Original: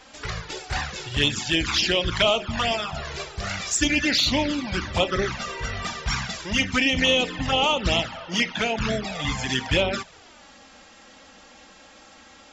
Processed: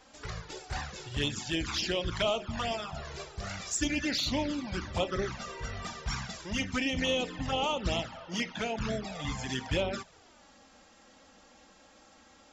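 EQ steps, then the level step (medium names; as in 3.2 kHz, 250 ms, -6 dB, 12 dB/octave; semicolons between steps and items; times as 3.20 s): peaking EQ 2.6 kHz -5 dB 1.9 oct; -7.0 dB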